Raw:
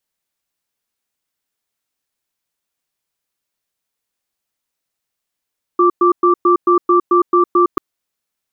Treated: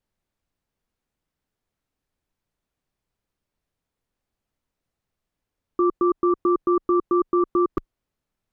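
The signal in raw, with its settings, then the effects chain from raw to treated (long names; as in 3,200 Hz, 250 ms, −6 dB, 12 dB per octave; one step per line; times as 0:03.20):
tone pair in a cadence 353 Hz, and 1,170 Hz, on 0.11 s, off 0.11 s, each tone −11 dBFS 1.99 s
spectral tilt −3.5 dB per octave
brickwall limiter −13 dBFS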